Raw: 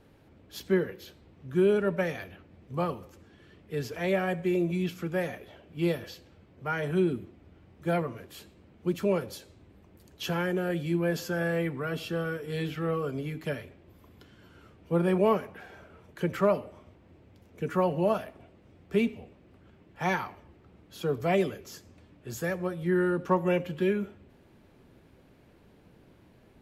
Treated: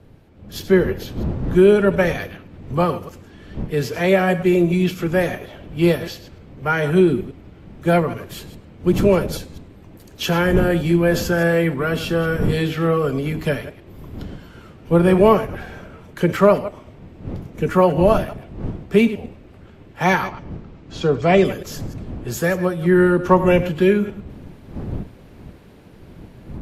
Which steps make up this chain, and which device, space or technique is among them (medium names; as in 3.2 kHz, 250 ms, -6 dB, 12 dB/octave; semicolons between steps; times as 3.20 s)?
chunks repeated in reverse 103 ms, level -14 dB; 20.28–21.45 s: low-pass 7 kHz 24 dB/octave; smartphone video outdoors (wind noise 190 Hz -43 dBFS; level rider gain up to 8 dB; trim +3.5 dB; AAC 64 kbps 32 kHz)